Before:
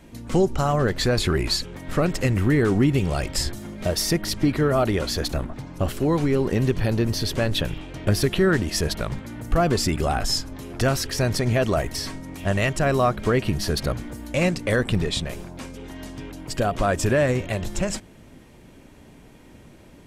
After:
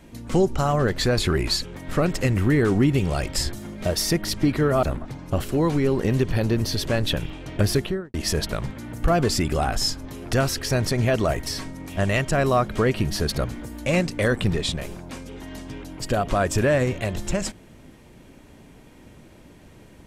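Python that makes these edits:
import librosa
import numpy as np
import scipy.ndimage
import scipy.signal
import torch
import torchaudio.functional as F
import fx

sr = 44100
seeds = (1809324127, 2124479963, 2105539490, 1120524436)

y = fx.studio_fade_out(x, sr, start_s=8.19, length_s=0.43)
y = fx.edit(y, sr, fx.cut(start_s=4.83, length_s=0.48), tone=tone)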